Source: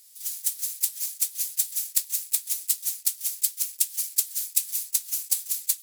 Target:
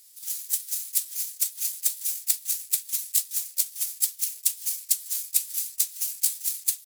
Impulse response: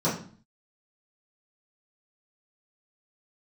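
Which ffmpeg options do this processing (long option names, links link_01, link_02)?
-af "atempo=0.85"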